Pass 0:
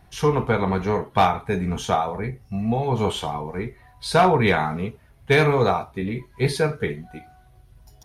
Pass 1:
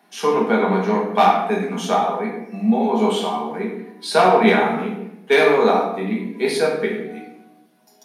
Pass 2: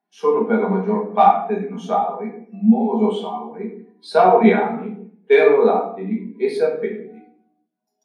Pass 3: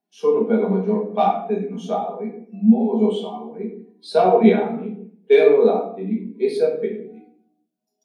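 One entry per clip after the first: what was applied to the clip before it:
steep high-pass 190 Hz 72 dB/oct; shoebox room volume 270 m³, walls mixed, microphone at 1.3 m
spectral expander 1.5:1
band shelf 1300 Hz -8.5 dB

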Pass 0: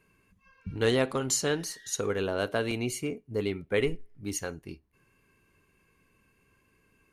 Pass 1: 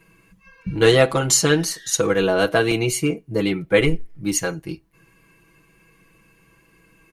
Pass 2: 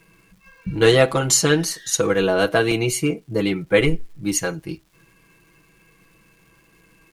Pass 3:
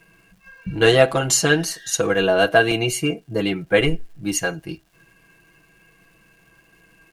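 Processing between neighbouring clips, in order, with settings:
comb 6.1 ms, depth 98%; gain +8.5 dB
crackle 570/s -50 dBFS
small resonant body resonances 700/1600/2800 Hz, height 9 dB, ringing for 30 ms; gain -1.5 dB

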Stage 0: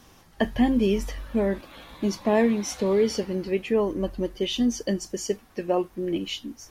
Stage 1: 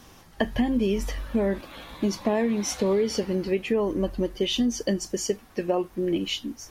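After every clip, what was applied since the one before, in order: compressor 6:1, threshold -23 dBFS, peak gain reduction 8 dB; gain +3 dB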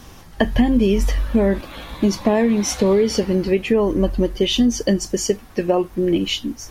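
low shelf 110 Hz +7.5 dB; gain +6.5 dB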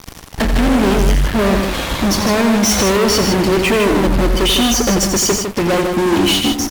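fuzz box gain 32 dB, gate -37 dBFS; on a send: loudspeakers at several distances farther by 30 m -8 dB, 53 m -6 dB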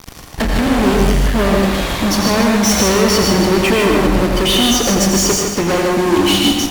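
reverb, pre-delay 0.107 s, DRR 3 dB; gain -1 dB

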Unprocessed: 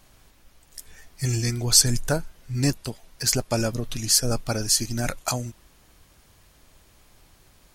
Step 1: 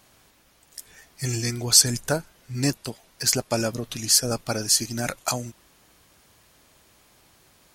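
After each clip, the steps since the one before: HPF 170 Hz 6 dB/oct; gain +1 dB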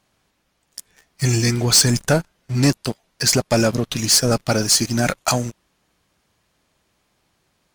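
high shelf 9900 Hz -11 dB; sample leveller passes 3; bell 180 Hz +4 dB 0.43 oct; gain -2 dB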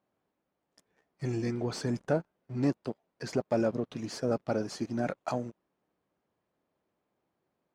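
band-pass 420 Hz, Q 0.72; gain -8.5 dB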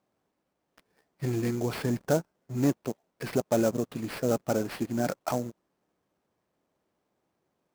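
sample-rate reducer 6900 Hz, jitter 20%; gain +3 dB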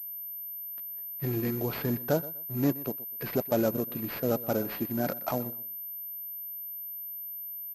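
feedback echo 0.124 s, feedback 23%, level -18 dB; pulse-width modulation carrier 13000 Hz; gain -1.5 dB

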